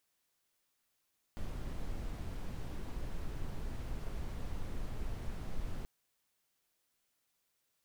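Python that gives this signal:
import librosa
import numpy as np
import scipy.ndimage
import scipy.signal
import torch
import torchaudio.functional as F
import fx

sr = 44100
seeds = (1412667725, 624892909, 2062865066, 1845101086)

y = fx.noise_colour(sr, seeds[0], length_s=4.48, colour='brown', level_db=-38.0)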